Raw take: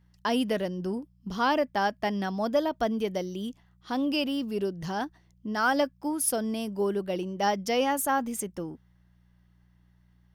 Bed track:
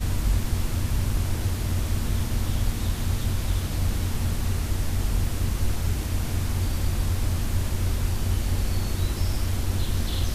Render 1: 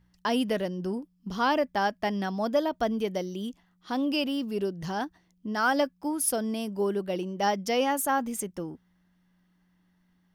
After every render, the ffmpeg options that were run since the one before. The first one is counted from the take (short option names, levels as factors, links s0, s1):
-af "bandreject=f=60:t=h:w=4,bandreject=f=120:t=h:w=4"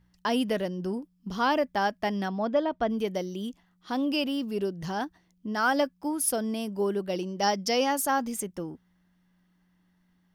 -filter_complex "[0:a]asettb=1/sr,asplit=3[s0][s1][s2];[s0]atrim=end=2.284[s3];[s1]atrim=start=2.28:end=2.9,asetpts=PTS-STARTPTS,afade=t=in:d=0.004:c=qsin,afade=t=out:st=0.616:d=0.004:c=qsin,lowpass=3200[s4];[s2]atrim=start=2.896[s5];[s3][s4]acrossfade=d=0.004:c1=hsin:c2=qsin[s6];[s6][s5]acrossfade=d=0.004:c1=qsin:c2=hsin,asettb=1/sr,asplit=3[s7][s8][s9];[s7]atrim=end=7.094[s10];[s8]atrim=start=7.09:end=8.34,asetpts=PTS-STARTPTS,afade=t=in:d=0.004:c=qsin,afade=t=out:st=1.246:d=0.004:c=qsin,equalizer=f=5000:w=2.3:g=9[s11];[s9]atrim=start=8.336[s12];[s10][s11]acrossfade=d=0.004:c1=hsin:c2=qsin[s13];[s13][s12]acrossfade=d=0.004:c1=qsin:c2=hsin"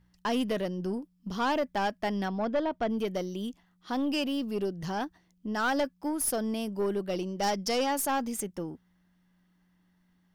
-af "aeval=exprs='(tanh(12.6*val(0)+0.25)-tanh(0.25))/12.6':c=same"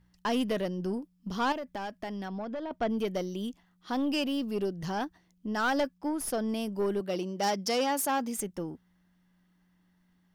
-filter_complex "[0:a]asettb=1/sr,asplit=3[s0][s1][s2];[s0]atrim=end=1.524[s3];[s1]atrim=start=1.52:end=2.71,asetpts=PTS-STARTPTS,afade=t=in:d=0.004:c=qsin,afade=t=out:st=1.186:d=0.004:c=qsin,acompressor=threshold=0.0224:ratio=6:attack=3.2:release=140:knee=1:detection=peak[s4];[s2]atrim=start=2.706[s5];[s3][s4]acrossfade=d=0.004:c1=hsin:c2=qsin[s6];[s6][s5]acrossfade=d=0.004:c1=qsin:c2=hsin,asettb=1/sr,asplit=3[s7][s8][s9];[s7]atrim=end=5.984[s10];[s8]atrim=start=5.98:end=6.49,asetpts=PTS-STARTPTS,afade=t=in:d=0.004:c=qsin,afade=t=out:st=0.506:d=0.004:c=qsin,highshelf=f=7800:g=-10[s11];[s9]atrim=start=6.486[s12];[s10][s11]acrossfade=d=0.004:c1=hsin:c2=qsin[s13];[s13][s12]acrossfade=d=0.004:c1=qsin:c2=hsin,asettb=1/sr,asplit=3[s14][s15][s16];[s14]atrim=end=7.004[s17];[s15]atrim=start=7:end=8.38,asetpts=PTS-STARTPTS,afade=t=in:d=0.004:c=qsin,afade=t=out:st=1.376:d=0.004:c=qsin,highpass=140[s18];[s16]atrim=start=8.376[s19];[s17][s18]acrossfade=d=0.004:c1=hsin:c2=qsin[s20];[s20][s19]acrossfade=d=0.004:c1=qsin:c2=hsin"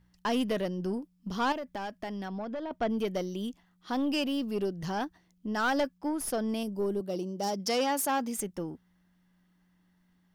-filter_complex "[0:a]asettb=1/sr,asplit=3[s0][s1][s2];[s0]atrim=end=6.634[s3];[s1]atrim=start=6.63:end=7.6,asetpts=PTS-STARTPTS,afade=t=in:d=0.004:c=qsin,afade=t=out:st=0.966:d=0.004:c=qsin,equalizer=f=2000:w=0.74:g=-12.5[s4];[s2]atrim=start=7.596[s5];[s3][s4]acrossfade=d=0.004:c1=hsin:c2=qsin[s6];[s6][s5]acrossfade=d=0.004:c1=qsin:c2=hsin"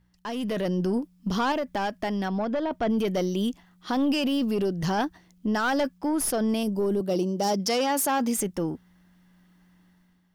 -af "alimiter=level_in=1.41:limit=0.0631:level=0:latency=1:release=12,volume=0.708,dynaudnorm=f=110:g=9:m=2.82"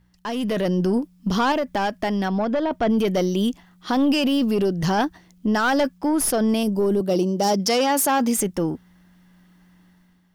-af "volume=1.78"